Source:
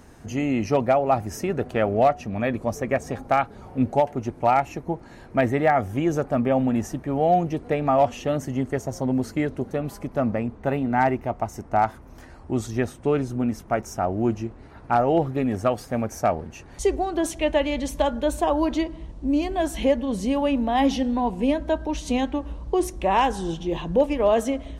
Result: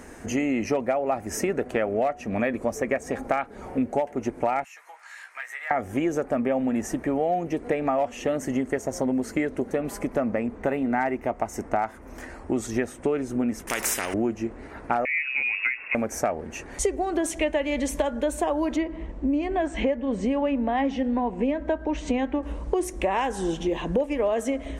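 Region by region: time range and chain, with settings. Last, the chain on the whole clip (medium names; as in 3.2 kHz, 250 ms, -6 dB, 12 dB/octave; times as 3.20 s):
4.64–5.71 s: high-pass 1.2 kHz 24 dB/octave + compression 2.5:1, threshold -48 dBFS + doubling 16 ms -4.5 dB
13.67–14.14 s: treble shelf 7.5 kHz +11.5 dB + compression 1.5:1, threshold -27 dBFS + spectrum-flattening compressor 4:1
15.05–15.95 s: compression 1.5:1, threshold -39 dBFS + frequency inversion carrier 2.7 kHz
18.76–22.43 s: brick-wall FIR low-pass 8.8 kHz + tone controls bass 0 dB, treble -13 dB
whole clip: graphic EQ 125/250/500/2000/4000/8000 Hz -8/+4/+5/+8/-4/+7 dB; compression 5:1, threshold -25 dBFS; trim +2.5 dB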